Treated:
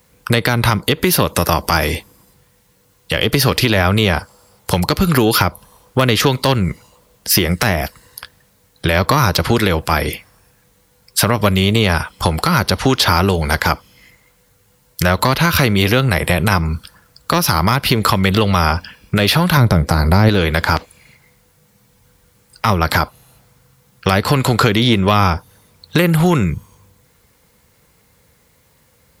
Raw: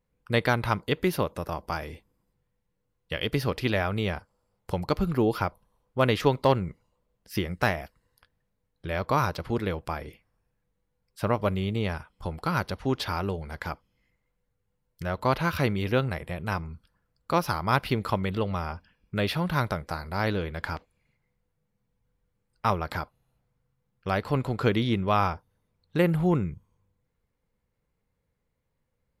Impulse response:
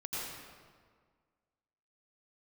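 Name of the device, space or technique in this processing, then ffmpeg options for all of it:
mastering chain: -filter_complex "[0:a]highpass=54,equalizer=f=2500:t=o:w=1.5:g=-4,acrossover=split=350|1300[s0][s1][s2];[s0]acompressor=threshold=0.0316:ratio=4[s3];[s1]acompressor=threshold=0.0141:ratio=4[s4];[s2]acompressor=threshold=0.00794:ratio=4[s5];[s3][s4][s5]amix=inputs=3:normalize=0,acompressor=threshold=0.0178:ratio=2,asoftclip=type=tanh:threshold=0.0668,tiltshelf=f=1300:g=-6.5,alimiter=level_in=28.2:limit=0.891:release=50:level=0:latency=1,asettb=1/sr,asplit=3[s6][s7][s8];[s6]atrim=end=19.574[s9];[s7]atrim=start=19.57:end=20.29,asetpts=PTS-STARTPTS,afade=t=in:d=0.004:c=qsin,afade=t=out:st=0.716:d=0.004:c=qsin,tiltshelf=f=720:g=6.5[s10];[s8]atrim=start=20.286[s11];[s9][s10]acrossfade=d=0.004:c1=hsin:c2=qsin[s12];[s12][s11]acrossfade=d=0.004:c1=qsin:c2=hsin,volume=0.891"

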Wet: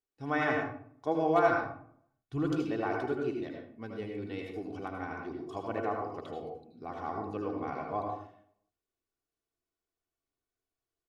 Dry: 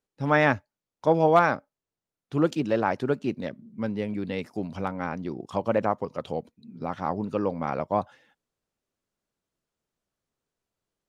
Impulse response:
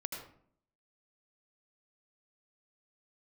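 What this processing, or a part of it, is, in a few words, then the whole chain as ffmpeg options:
microphone above a desk: -filter_complex "[0:a]asplit=3[s0][s1][s2];[s0]afade=t=out:st=1.47:d=0.02[s3];[s1]asubboost=boost=6:cutoff=180,afade=t=in:st=1.47:d=0.02,afade=t=out:st=2.49:d=0.02[s4];[s2]afade=t=in:st=2.49:d=0.02[s5];[s3][s4][s5]amix=inputs=3:normalize=0,aecho=1:1:2.7:0.66[s6];[1:a]atrim=start_sample=2205[s7];[s6][s7]afir=irnorm=-1:irlink=0,volume=0.376"

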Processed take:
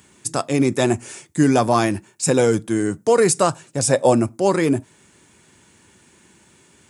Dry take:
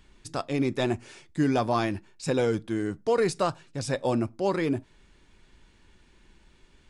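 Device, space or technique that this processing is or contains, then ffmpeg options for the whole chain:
budget condenser microphone: -filter_complex "[0:a]asettb=1/sr,asplit=3[s0][s1][s2];[s0]atrim=end=3.644[s3];[s1]atrim=start=3.64:end=4.14,asetpts=PTS-STARTPTS,afade=t=in:d=0.004:c=qsin,afade=t=out:st=0.496:d=0.004:c=qsin,equalizer=f=630:w=1.5:g=5.5[s4];[s2]atrim=start=4.136[s5];[s3][s4]acrossfade=d=0.004:c1=hsin:c2=qsin[s6];[s6][s5]acrossfade=d=0.004:c1=qsin:c2=hsin,highpass=f=95:w=0.5412,highpass=f=95:w=1.3066,highshelf=f=5800:t=q:w=1.5:g=9.5,volume=2.66"

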